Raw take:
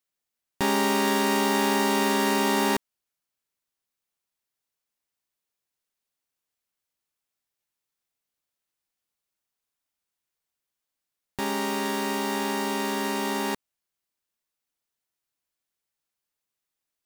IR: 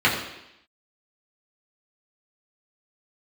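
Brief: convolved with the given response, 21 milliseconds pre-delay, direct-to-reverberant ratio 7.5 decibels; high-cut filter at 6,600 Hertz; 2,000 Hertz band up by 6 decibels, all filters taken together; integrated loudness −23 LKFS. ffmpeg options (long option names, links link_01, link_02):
-filter_complex "[0:a]lowpass=6600,equalizer=frequency=2000:width_type=o:gain=7,asplit=2[link_01][link_02];[1:a]atrim=start_sample=2205,adelay=21[link_03];[link_02][link_03]afir=irnorm=-1:irlink=0,volume=-27dB[link_04];[link_01][link_04]amix=inputs=2:normalize=0,volume=-0.5dB"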